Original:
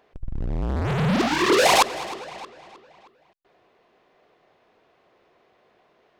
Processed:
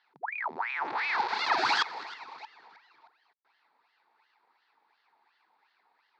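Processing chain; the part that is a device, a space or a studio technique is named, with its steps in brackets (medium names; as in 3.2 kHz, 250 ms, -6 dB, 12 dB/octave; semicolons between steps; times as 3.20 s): voice changer toy (ring modulator with a swept carrier 1.3 kHz, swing 90%, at 2.8 Hz; cabinet simulation 520–4600 Hz, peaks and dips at 570 Hz -10 dB, 890 Hz +10 dB, 3 kHz -9 dB, 4.4 kHz +6 dB); trim -6 dB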